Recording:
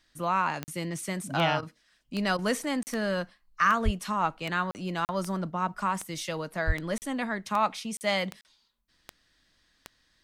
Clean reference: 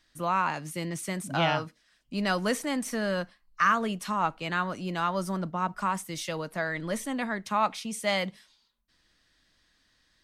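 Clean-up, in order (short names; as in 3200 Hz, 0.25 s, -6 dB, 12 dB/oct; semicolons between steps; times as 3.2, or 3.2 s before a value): de-click; 3.84–3.96 HPF 140 Hz 24 dB/oct; 6.66–6.78 HPF 140 Hz 24 dB/oct; interpolate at 0.64/2.83/4.71/5.05/6.98/7.97/8.41, 39 ms; interpolate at 1.61/2.37, 15 ms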